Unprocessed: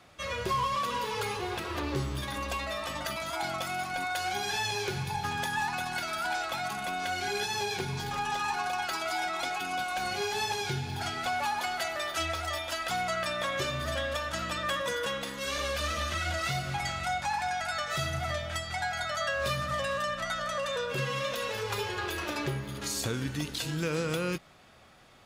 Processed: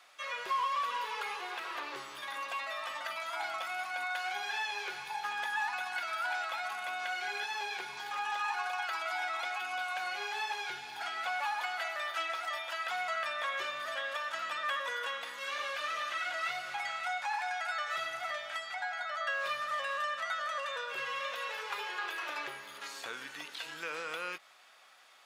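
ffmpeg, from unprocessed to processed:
-filter_complex "[0:a]asettb=1/sr,asplit=3[a][b][c];[a]atrim=end=18.744[d];[b]atrim=start=18.74:end=19.27,asetpts=PTS-STARTPTS,afade=t=in:d=0.004:c=qsin,afade=t=out:st=0.526:d=0.004:c=qsin,lowpass=f=2k:p=1[e];[c]atrim=start=19.266[f];[d][e]acrossfade=d=0.004:c1=hsin:c2=qsin[g];[g][f]acrossfade=d=0.004:c1=qsin:c2=hsin,acrossover=split=3100[h][i];[i]acompressor=threshold=-52dB:ratio=4:attack=1:release=60[j];[h][j]amix=inputs=2:normalize=0,highpass=930"

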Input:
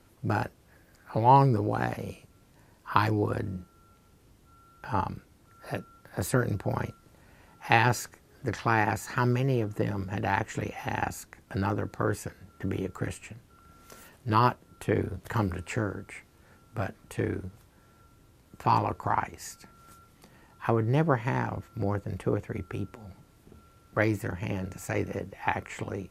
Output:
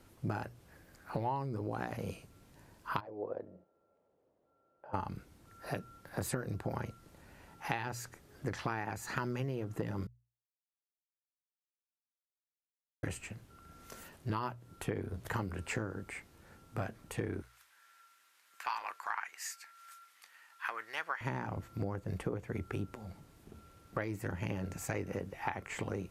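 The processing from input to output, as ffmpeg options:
-filter_complex "[0:a]asplit=3[a][b][c];[a]afade=t=out:st=2.99:d=0.02[d];[b]bandpass=f=570:t=q:w=3.6,afade=t=in:st=2.99:d=0.02,afade=t=out:st=4.93:d=0.02[e];[c]afade=t=in:st=4.93:d=0.02[f];[d][e][f]amix=inputs=3:normalize=0,asettb=1/sr,asplit=3[g][h][i];[g]atrim=end=17.424[j];[h]atrim=start=17.42:end=21.21,asetpts=PTS-STARTPTS,afade=t=in:d=0.004:c=qsin,afade=t=out:st=3.786:d=0.004:c=qsin,highpass=f=1.6k:t=q:w=1.5[k];[i]atrim=start=21.206[l];[j][k]acrossfade=d=0.004:c1=hsin:c2=qsin[m];[m][l]acrossfade=d=0.004:c1=qsin:c2=hsin,asplit=3[n][o][p];[n]atrim=end=10.07,asetpts=PTS-STARTPTS,afade=t=out:st=10.066:d=0.004:c=hsin[q];[o]atrim=start=10.07:end=13.03,asetpts=PTS-STARTPTS,volume=0[r];[p]atrim=start=13.03,asetpts=PTS-STARTPTS,afade=t=in:d=0.004:c=hsin[s];[q][r][s]concat=n=3:v=0:a=1,bandreject=f=60:t=h:w=6,bandreject=f=120:t=h:w=6,acompressor=threshold=-31dB:ratio=16,volume=-1dB"

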